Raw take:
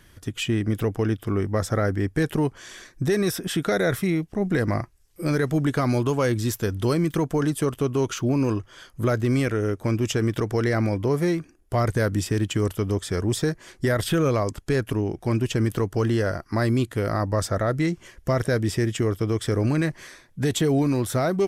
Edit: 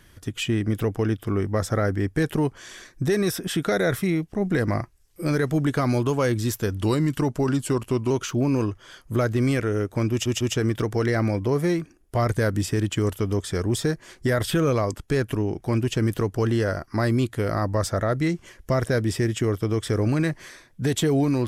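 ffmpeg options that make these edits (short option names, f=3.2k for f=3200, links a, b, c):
-filter_complex "[0:a]asplit=5[a][b][c][d][e];[a]atrim=end=6.814[f];[b]atrim=start=6.81:end=7.99,asetpts=PTS-STARTPTS,asetrate=40131,aresample=44100[g];[c]atrim=start=7.986:end=10.142[h];[d]atrim=start=9.988:end=10.142[i];[e]atrim=start=9.988[j];[f][g]acrossfade=d=0.004:c1=hsin:c2=hsin[k];[k][h]acrossfade=d=0.004:c1=hsin:c2=hsin[l];[l][i]acrossfade=d=0.004:c1=hsin:c2=hsin[m];[m][j]acrossfade=d=0.004:c1=hsin:c2=hsin"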